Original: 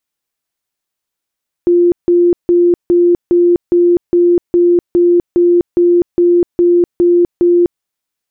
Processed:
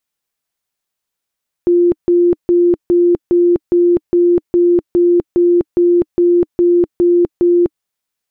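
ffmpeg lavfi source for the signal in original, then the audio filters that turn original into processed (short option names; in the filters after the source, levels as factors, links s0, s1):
-f lavfi -i "aevalsrc='0.501*sin(2*PI*349*mod(t,0.41))*lt(mod(t,0.41),87/349)':d=6.15:s=44100"
-af "equalizer=f=310:w=7.7:g=-6"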